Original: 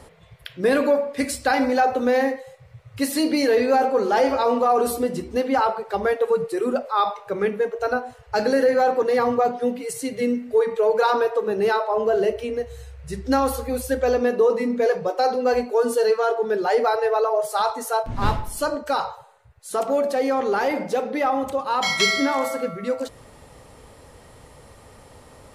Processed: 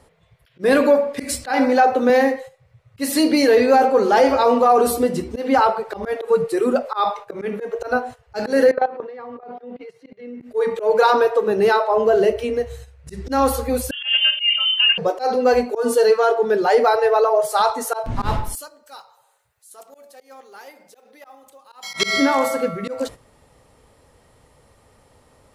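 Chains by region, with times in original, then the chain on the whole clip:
1.44–2.1 HPF 150 Hz + high shelf 4400 Hz -4.5 dB
8.71–10.41 HPF 320 Hz 6 dB/oct + level quantiser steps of 18 dB + air absorption 310 m
13.91–14.98 air absorption 410 m + inverted band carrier 3300 Hz
18.55–21.94 RIAA curve recording + compressor 2:1, threshold -50 dBFS + short-mantissa float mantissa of 4-bit
whole clip: gate -37 dBFS, range -12 dB; auto swell 0.127 s; gain +4.5 dB

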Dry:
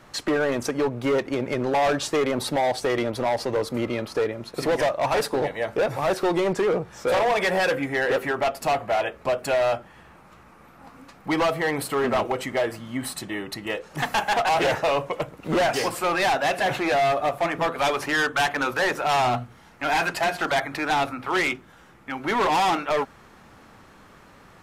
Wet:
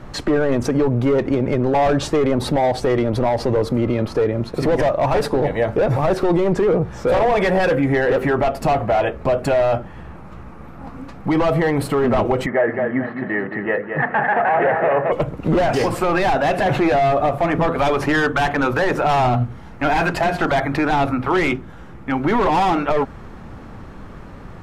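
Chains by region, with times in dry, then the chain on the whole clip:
12.46–15.12 speaker cabinet 230–2000 Hz, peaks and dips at 300 Hz -8 dB, 1000 Hz -3 dB, 1800 Hz +9 dB + feedback echo 0.217 s, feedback 31%, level -7.5 dB
whole clip: tilt -3 dB/oct; maximiser +17 dB; gain -9 dB

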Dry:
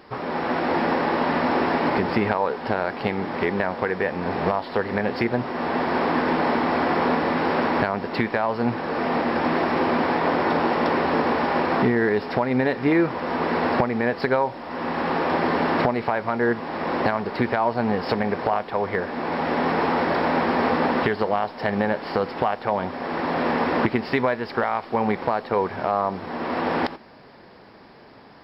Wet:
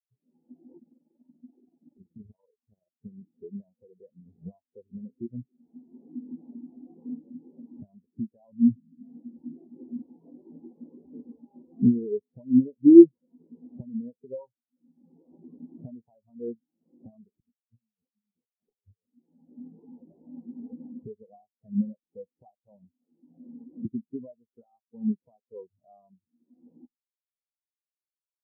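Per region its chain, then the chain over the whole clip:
0.78–3.04 AM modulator 21 Hz, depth 55% + Doppler distortion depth 0.45 ms
8.52–9.03 synth low-pass 230 Hz, resonance Q 1.8 + low shelf 130 Hz +4 dB + core saturation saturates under 580 Hz
17.4–19.06 negative-ratio compressor -34 dBFS + three-band expander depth 40%
whole clip: tilt -3.5 dB/oct; spectral expander 4:1; gain -1.5 dB

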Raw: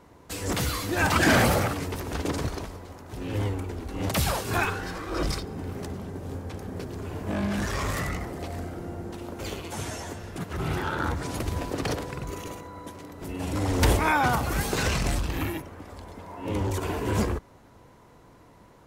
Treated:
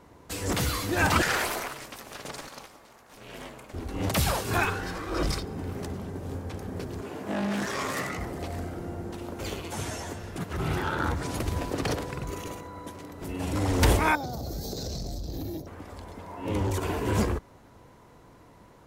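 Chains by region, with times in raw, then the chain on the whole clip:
1.22–3.74 HPF 980 Hz 6 dB/oct + ring modulator 150 Hz
7.01–8.18 HPF 200 Hz + doubler 15 ms -11 dB + Doppler distortion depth 0.14 ms
14.15–15.67 EQ curve 690 Hz 0 dB, 1000 Hz -17 dB, 2800 Hz -21 dB, 4100 Hz +4 dB, 6300 Hz +1 dB, 9500 Hz -14 dB, 14000 Hz +3 dB + compressor 10:1, threshold -30 dBFS
whole clip: dry

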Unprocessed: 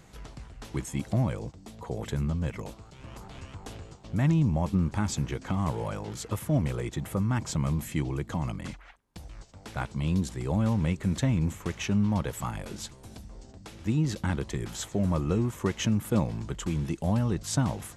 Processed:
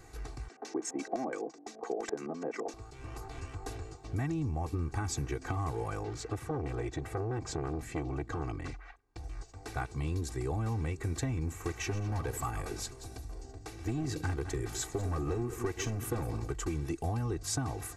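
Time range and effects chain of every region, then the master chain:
0.48–2.74 steep high-pass 190 Hz 48 dB/oct + bell 1700 Hz +4.5 dB 0.64 oct + LFO low-pass square 5.9 Hz 670–6200 Hz
6.03–9.24 air absorption 74 m + core saturation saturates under 560 Hz
11.48–16.53 regenerating reverse delay 0.104 s, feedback 42%, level -12 dB + overloaded stage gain 22 dB
whole clip: comb 2.6 ms, depth 97%; compressor, threshold -28 dBFS; bell 3200 Hz -9.5 dB 0.36 oct; gain -2 dB

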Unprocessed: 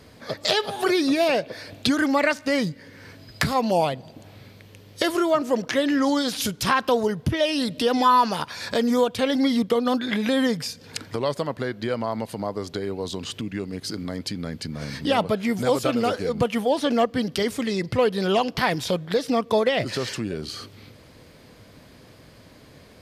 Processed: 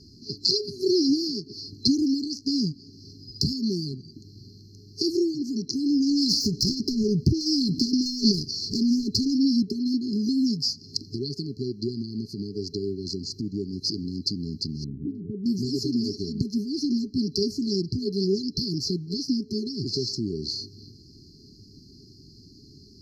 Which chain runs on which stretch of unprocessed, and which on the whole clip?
6.11–9.35 self-modulated delay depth 0.11 ms + transient shaper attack +6 dB, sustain +10 dB + hard clip -12.5 dBFS
14.84–15.46 steep low-pass 2800 Hz 96 dB/oct + compressor 2.5:1, threshold -27 dBFS
whole clip: resonant high shelf 6900 Hz -10.5 dB, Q 3; FFT band-reject 420–4100 Hz

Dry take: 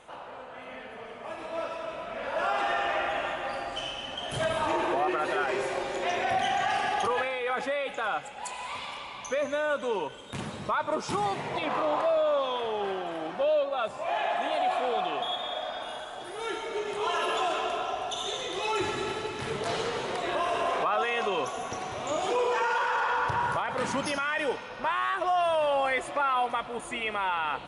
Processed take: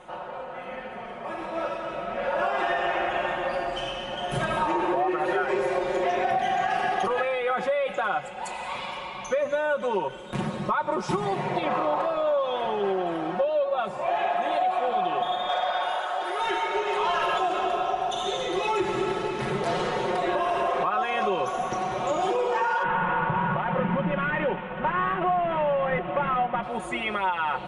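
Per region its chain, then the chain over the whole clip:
15.49–17.38 HPF 420 Hz + overdrive pedal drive 13 dB, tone 4000 Hz, clips at -17.5 dBFS
22.83–26.63 CVSD 16 kbps + bell 170 Hz +12.5 dB 0.45 oct + notch 2300 Hz, Q 22
whole clip: high shelf 2300 Hz -10 dB; comb 5.5 ms, depth 80%; compressor, threshold -27 dBFS; gain +5.5 dB

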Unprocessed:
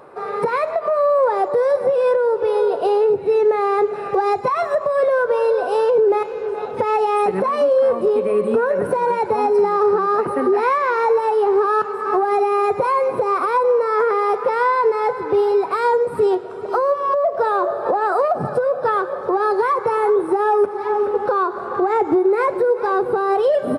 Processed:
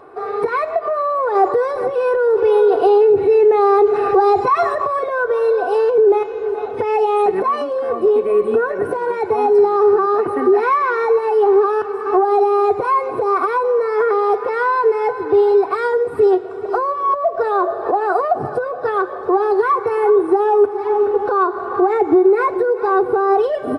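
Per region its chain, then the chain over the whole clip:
1.35–4.99 notch 640 Hz, Q 7.3 + fast leveller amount 50%
whole clip: high shelf 3600 Hz -7 dB; comb 2.7 ms, depth 66%

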